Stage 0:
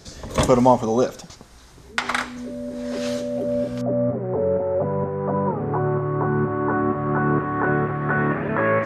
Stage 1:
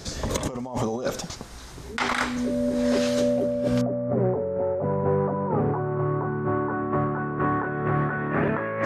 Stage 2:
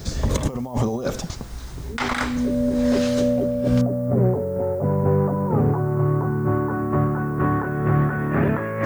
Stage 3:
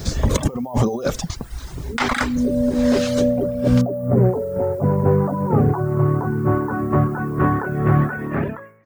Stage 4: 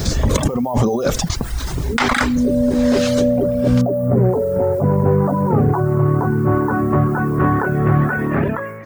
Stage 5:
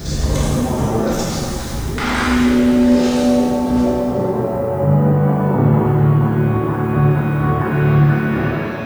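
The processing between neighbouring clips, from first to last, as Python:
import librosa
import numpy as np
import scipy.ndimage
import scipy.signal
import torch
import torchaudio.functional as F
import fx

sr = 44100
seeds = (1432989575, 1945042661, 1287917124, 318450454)

y1 = fx.over_compress(x, sr, threshold_db=-27.0, ratio=-1.0)
y1 = y1 * 10.0 ** (1.5 / 20.0)
y2 = fx.low_shelf(y1, sr, hz=200.0, db=11.0)
y2 = fx.dmg_noise_colour(y2, sr, seeds[0], colour='violet', level_db=-56.0)
y3 = fx.fade_out_tail(y2, sr, length_s=0.82)
y3 = fx.dereverb_blind(y3, sr, rt60_s=0.77)
y3 = y3 * 10.0 ** (4.5 / 20.0)
y4 = fx.env_flatten(y3, sr, amount_pct=50)
y5 = fx.rev_shimmer(y4, sr, seeds[1], rt60_s=1.9, semitones=7, shimmer_db=-8, drr_db=-6.5)
y5 = y5 * 10.0 ** (-8.5 / 20.0)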